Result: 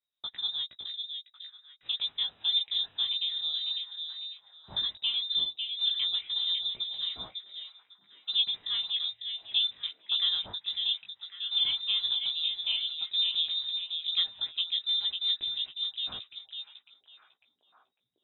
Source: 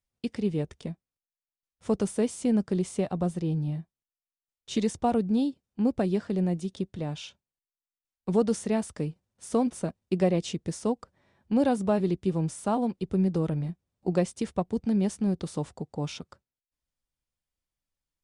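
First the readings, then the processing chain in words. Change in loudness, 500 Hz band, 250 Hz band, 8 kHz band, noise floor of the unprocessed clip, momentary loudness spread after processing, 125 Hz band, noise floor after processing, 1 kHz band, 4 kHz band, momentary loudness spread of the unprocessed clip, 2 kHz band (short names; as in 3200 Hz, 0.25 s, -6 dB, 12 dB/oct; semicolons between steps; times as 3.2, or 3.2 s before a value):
0.0 dB, under -30 dB, under -35 dB, under -35 dB, under -85 dBFS, 14 LU, under -30 dB, -74 dBFS, -19.5 dB, +22.0 dB, 10 LU, -0.5 dB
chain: inverted band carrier 3800 Hz; chorus 0.13 Hz, delay 15.5 ms, depth 5 ms; delay with a stepping band-pass 0.55 s, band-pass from 2900 Hz, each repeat -0.7 oct, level -5 dB; gain -2 dB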